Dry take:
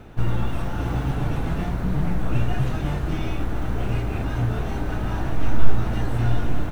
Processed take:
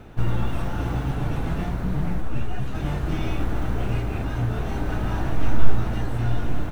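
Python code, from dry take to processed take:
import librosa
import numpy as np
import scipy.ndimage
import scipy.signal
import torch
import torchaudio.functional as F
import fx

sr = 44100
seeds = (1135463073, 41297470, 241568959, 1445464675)

y = fx.rider(x, sr, range_db=10, speed_s=0.5)
y = fx.ensemble(y, sr, at=(2.2, 2.74), fade=0.02)
y = F.gain(torch.from_numpy(y), -1.0).numpy()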